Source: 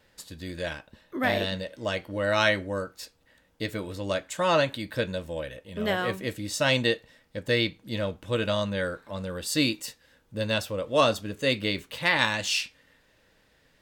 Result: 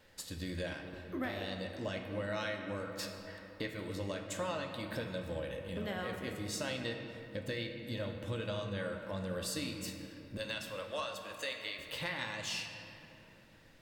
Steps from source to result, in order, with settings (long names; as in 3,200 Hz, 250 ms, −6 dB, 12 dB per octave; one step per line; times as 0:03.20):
0:02.87–0:03.71: parametric band 1,100 Hz +11.5 dB 2.6 octaves
0:10.37–0:11.79: high-pass filter 800 Hz 12 dB per octave
downward compressor 6 to 1, threshold −37 dBFS, peak gain reduction 17.5 dB
on a send: convolution reverb RT60 3.1 s, pre-delay 4 ms, DRR 3 dB
on the sum: level −1 dB